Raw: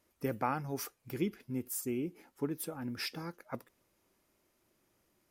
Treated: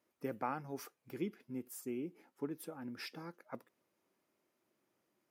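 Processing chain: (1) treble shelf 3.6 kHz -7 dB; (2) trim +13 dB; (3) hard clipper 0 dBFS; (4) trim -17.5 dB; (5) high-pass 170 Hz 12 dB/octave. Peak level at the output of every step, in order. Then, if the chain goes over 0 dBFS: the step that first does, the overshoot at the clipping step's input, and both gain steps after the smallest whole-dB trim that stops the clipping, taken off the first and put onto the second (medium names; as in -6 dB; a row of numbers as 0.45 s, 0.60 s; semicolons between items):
-18.0 dBFS, -5.0 dBFS, -5.0 dBFS, -22.5 dBFS, -24.0 dBFS; nothing clips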